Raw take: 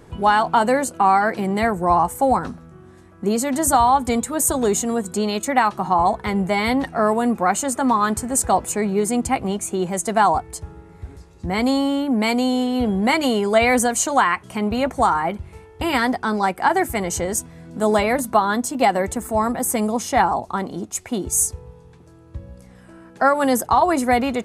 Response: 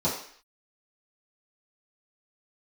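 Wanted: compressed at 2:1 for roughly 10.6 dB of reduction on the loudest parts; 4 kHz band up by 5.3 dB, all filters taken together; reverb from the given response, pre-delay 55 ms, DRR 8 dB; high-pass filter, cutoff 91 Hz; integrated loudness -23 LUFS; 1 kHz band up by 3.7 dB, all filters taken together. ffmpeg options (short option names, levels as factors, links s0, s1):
-filter_complex "[0:a]highpass=91,equalizer=f=1000:t=o:g=4.5,equalizer=f=4000:t=o:g=6.5,acompressor=threshold=0.0398:ratio=2,asplit=2[s0][s1];[1:a]atrim=start_sample=2205,adelay=55[s2];[s1][s2]afir=irnorm=-1:irlink=0,volume=0.112[s3];[s0][s3]amix=inputs=2:normalize=0,volume=1.19"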